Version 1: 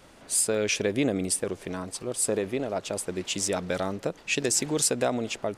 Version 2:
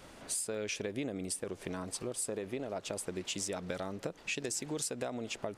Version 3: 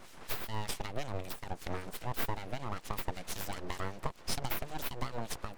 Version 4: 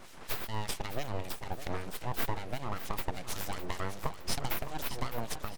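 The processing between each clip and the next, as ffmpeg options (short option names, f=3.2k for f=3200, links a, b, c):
-af "acompressor=threshold=-35dB:ratio=5"
-filter_complex "[0:a]acrossover=split=1600[a][b];[a]aeval=exprs='val(0)*(1-0.7/2+0.7/2*cos(2*PI*5.2*n/s))':c=same[c];[b]aeval=exprs='val(0)*(1-0.7/2-0.7/2*cos(2*PI*5.2*n/s))':c=same[d];[c][d]amix=inputs=2:normalize=0,aeval=exprs='abs(val(0))':c=same,volume=6dB"
-af "aecho=1:1:611|1222|1833|2444:0.266|0.0931|0.0326|0.0114,volume=1.5dB"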